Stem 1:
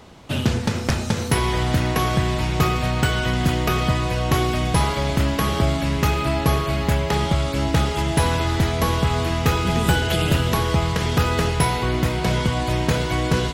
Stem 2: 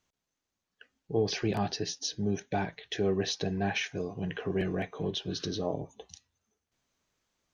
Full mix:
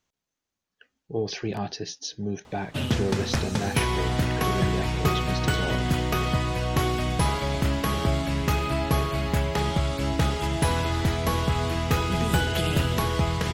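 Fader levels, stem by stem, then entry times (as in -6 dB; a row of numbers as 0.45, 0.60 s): -4.5, 0.0 dB; 2.45, 0.00 s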